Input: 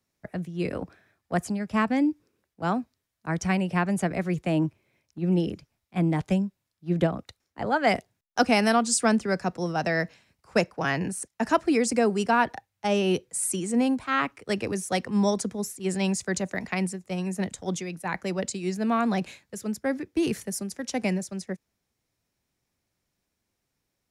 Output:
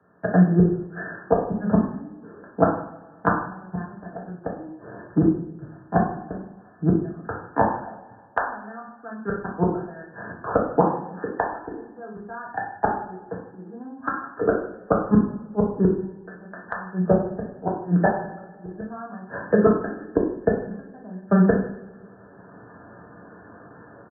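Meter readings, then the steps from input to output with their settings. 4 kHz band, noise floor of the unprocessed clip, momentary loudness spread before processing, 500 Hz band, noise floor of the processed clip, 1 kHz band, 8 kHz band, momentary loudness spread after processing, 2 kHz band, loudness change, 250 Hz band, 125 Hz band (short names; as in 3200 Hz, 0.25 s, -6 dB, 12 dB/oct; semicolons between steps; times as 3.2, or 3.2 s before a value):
under -35 dB, -81 dBFS, 11 LU, +3.5 dB, -48 dBFS, +2.0 dB, under -40 dB, 19 LU, -2.5 dB, +3.0 dB, +2.5 dB, +4.5 dB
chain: HPF 180 Hz 12 dB/oct; dynamic EQ 500 Hz, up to -8 dB, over -42 dBFS, Q 2.6; AGC gain up to 15 dB; flipped gate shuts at -12 dBFS, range -42 dB; brick-wall FIR low-pass 1800 Hz; echo 0.102 s -20.5 dB; two-slope reverb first 0.53 s, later 1.6 s, from -22 dB, DRR -4.5 dB; three-band squash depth 40%; gain +7.5 dB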